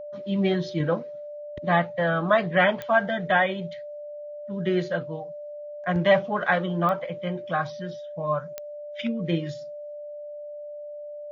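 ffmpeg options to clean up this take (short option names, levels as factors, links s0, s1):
-af "adeclick=t=4,bandreject=f=590:w=30"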